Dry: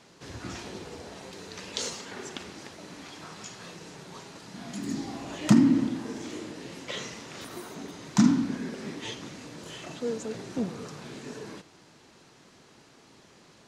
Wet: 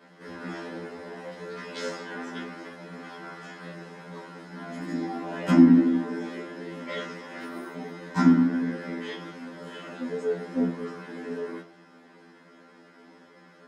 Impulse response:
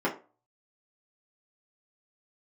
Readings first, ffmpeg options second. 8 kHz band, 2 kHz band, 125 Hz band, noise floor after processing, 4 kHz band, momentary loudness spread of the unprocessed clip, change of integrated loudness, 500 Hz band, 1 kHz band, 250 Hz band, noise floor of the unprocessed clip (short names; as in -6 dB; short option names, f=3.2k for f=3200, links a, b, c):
under -10 dB, +4.0 dB, +0.5 dB, -54 dBFS, -5.0 dB, 21 LU, +3.5 dB, +5.0 dB, +4.5 dB, +3.5 dB, -57 dBFS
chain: -filter_complex "[0:a]highpass=f=380:p=1[a];[1:a]atrim=start_sample=2205[b];[a][b]afir=irnorm=-1:irlink=0,afftfilt=real='re*2*eq(mod(b,4),0)':imag='im*2*eq(mod(b,4),0)':win_size=2048:overlap=0.75,volume=-3.5dB"